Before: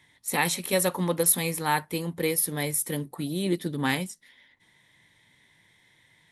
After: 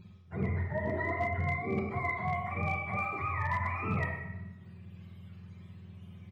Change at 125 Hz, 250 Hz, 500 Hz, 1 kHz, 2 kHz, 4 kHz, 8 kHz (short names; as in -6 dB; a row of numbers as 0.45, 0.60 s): -0.5 dB, -8.5 dB, -8.0 dB, -2.5 dB, -2.5 dB, -25.0 dB, under -40 dB